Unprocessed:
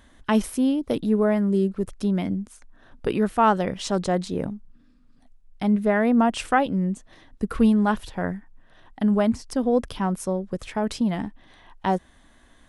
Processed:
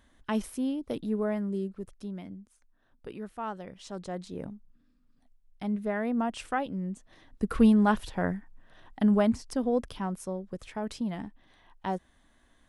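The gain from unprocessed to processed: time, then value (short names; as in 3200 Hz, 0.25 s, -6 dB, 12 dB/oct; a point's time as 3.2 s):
1.35 s -9 dB
2.41 s -17.5 dB
3.69 s -17.5 dB
4.49 s -10 dB
6.83 s -10 dB
7.53 s -2 dB
9.04 s -2 dB
10.2 s -9 dB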